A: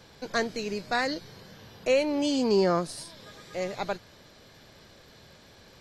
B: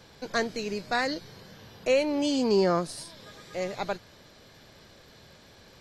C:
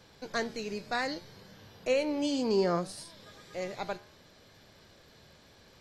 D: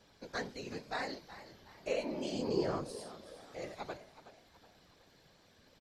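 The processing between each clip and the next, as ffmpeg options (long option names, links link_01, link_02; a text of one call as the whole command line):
ffmpeg -i in.wav -af anull out.wav
ffmpeg -i in.wav -af "flanger=delay=9.9:depth=4.1:regen=84:speed=0.65:shape=sinusoidal" out.wav
ffmpeg -i in.wav -filter_complex "[0:a]afftfilt=real='hypot(re,im)*cos(2*PI*random(0))':imag='hypot(re,im)*sin(2*PI*random(1))':win_size=512:overlap=0.75,asplit=5[link_01][link_02][link_03][link_04][link_05];[link_02]adelay=371,afreqshift=67,volume=-14.5dB[link_06];[link_03]adelay=742,afreqshift=134,volume=-22dB[link_07];[link_04]adelay=1113,afreqshift=201,volume=-29.6dB[link_08];[link_05]adelay=1484,afreqshift=268,volume=-37.1dB[link_09];[link_01][link_06][link_07][link_08][link_09]amix=inputs=5:normalize=0,volume=-1dB" out.wav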